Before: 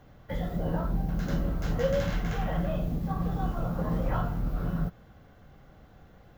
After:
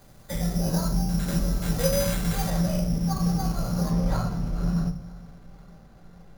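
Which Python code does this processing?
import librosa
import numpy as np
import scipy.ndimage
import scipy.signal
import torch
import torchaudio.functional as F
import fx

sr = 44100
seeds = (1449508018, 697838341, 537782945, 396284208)

y = fx.echo_feedback(x, sr, ms=477, feedback_pct=59, wet_db=-23.0)
y = fx.room_shoebox(y, sr, seeds[0], volume_m3=510.0, walls='furnished', distance_m=1.2)
y = np.repeat(y[::8], 8)[:len(y)]
y = fx.high_shelf(y, sr, hz=4800.0, db=fx.steps((0.0, 11.5), (2.49, 6.0), (3.9, -5.0)))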